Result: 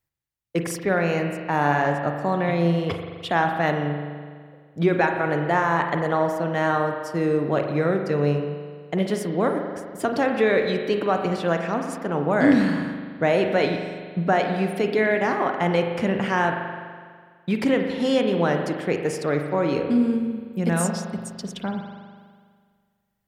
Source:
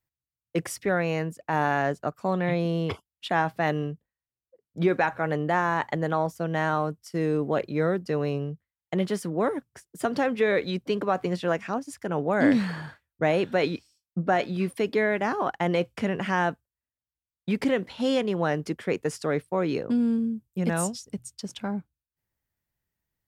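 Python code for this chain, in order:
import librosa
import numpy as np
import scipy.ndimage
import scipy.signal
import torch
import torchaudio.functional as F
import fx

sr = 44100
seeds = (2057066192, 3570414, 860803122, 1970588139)

y = fx.rev_spring(x, sr, rt60_s=1.8, pass_ms=(41,), chirp_ms=20, drr_db=4.0)
y = y * 10.0 ** (2.5 / 20.0)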